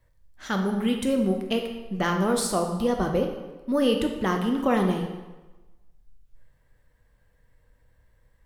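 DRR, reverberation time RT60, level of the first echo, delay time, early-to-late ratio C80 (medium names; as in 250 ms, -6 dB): 3.0 dB, 1.2 s, no echo, no echo, 8.0 dB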